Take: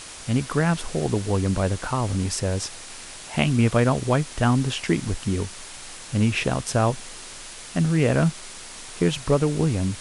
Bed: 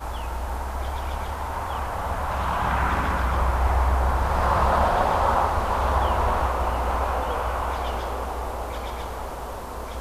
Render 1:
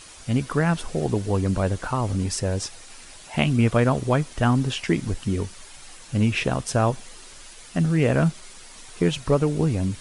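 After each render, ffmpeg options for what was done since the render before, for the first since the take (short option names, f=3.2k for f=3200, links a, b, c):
-af "afftdn=nr=8:nf=-40"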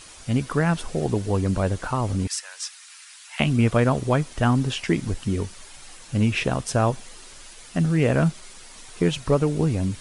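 -filter_complex "[0:a]asettb=1/sr,asplit=3[a][b][c];[a]atrim=end=2.274[d];[b]atrim=start=2.27:end=3.4,asetpts=PTS-STARTPTS,afade=t=in:d=0.004:c=qsin,afade=t=out:st=1.126:d=0.004:c=qsin,highpass=f=1.2k:w=0.5412,highpass=f=1.2k:w=1.3066[e];[c]atrim=start=3.396[f];[d][e]acrossfade=d=0.004:c1=hsin:c2=qsin[g];[g][f]acrossfade=d=0.004:c1=qsin:c2=hsin"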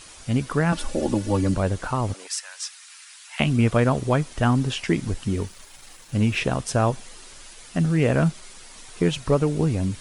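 -filter_complex "[0:a]asettb=1/sr,asplit=3[a][b][c];[a]atrim=end=0.724[d];[b]atrim=start=0.72:end=1.54,asetpts=PTS-STARTPTS,afade=t=in:d=0.004:c=qsin,afade=t=out:st=0.816:d=0.004:c=qsin,aecho=1:1:3.5:0.93,atrim=end_sample=36162[e];[c]atrim=start=1.536[f];[d][e]acrossfade=d=0.004:c1=hsin:c2=qsin[g];[g][f]acrossfade=d=0.004:c1=qsin:c2=hsin,asplit=3[h][i][j];[h]afade=t=out:st=2.12:d=0.02[k];[i]highpass=f=510:w=0.5412,highpass=f=510:w=1.3066,afade=t=in:st=2.12:d=0.02,afade=t=out:st=2.66:d=0.02[l];[j]afade=t=in:st=2.66:d=0.02[m];[k][l][m]amix=inputs=3:normalize=0,asettb=1/sr,asplit=3[n][o][p];[n]atrim=end=5.284[q];[o]atrim=start=5.28:end=6.38,asetpts=PTS-STARTPTS,afade=t=in:d=0.004:c=qsin,afade=t=out:st=1.096:d=0.004:c=qsin,aeval=exprs='sgn(val(0))*max(abs(val(0))-0.00266,0)':c=same[r];[p]atrim=start=6.376[s];[q][r]acrossfade=d=0.004:c1=hsin:c2=qsin[t];[t][s]acrossfade=d=0.004:c1=qsin:c2=hsin"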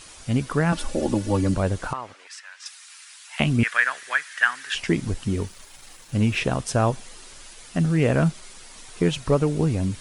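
-filter_complex "[0:a]asettb=1/sr,asplit=3[a][b][c];[a]atrim=end=1.934[d];[b]atrim=start=1.93:end=2.66,asetpts=PTS-STARTPTS,afade=t=in:d=0.004:c=qsin,afade=t=out:st=0.726:d=0.004:c=qsin,bandpass=f=1.7k:t=q:w=1.1[e];[c]atrim=start=2.656[f];[d][e]acrossfade=d=0.004:c1=hsin:c2=qsin[g];[g][f]acrossfade=d=0.004:c1=qsin:c2=hsin,asettb=1/sr,asplit=3[h][i][j];[h]atrim=end=3.634[k];[i]atrim=start=3.63:end=4.75,asetpts=PTS-STARTPTS,afade=t=in:d=0.004:c=qsin,afade=t=out:st=1.116:d=0.004:c=qsin,highpass=f=1.7k:t=q:w=6.2[l];[j]atrim=start=4.746[m];[k][l]acrossfade=d=0.004:c1=hsin:c2=qsin[n];[n][m]acrossfade=d=0.004:c1=qsin:c2=hsin"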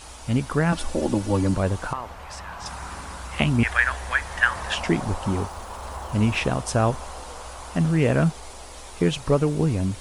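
-filter_complex "[1:a]volume=-13dB[a];[0:a][a]amix=inputs=2:normalize=0"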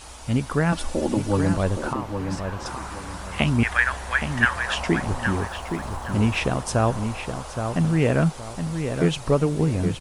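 -filter_complex "[0:a]asplit=2[a][b];[b]adelay=819,lowpass=f=2.9k:p=1,volume=-7dB,asplit=2[c][d];[d]adelay=819,lowpass=f=2.9k:p=1,volume=0.3,asplit=2[e][f];[f]adelay=819,lowpass=f=2.9k:p=1,volume=0.3,asplit=2[g][h];[h]adelay=819,lowpass=f=2.9k:p=1,volume=0.3[i];[a][c][e][g][i]amix=inputs=5:normalize=0"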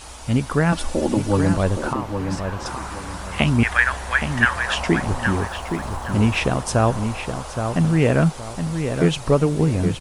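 -af "volume=3dB,alimiter=limit=-3dB:level=0:latency=1"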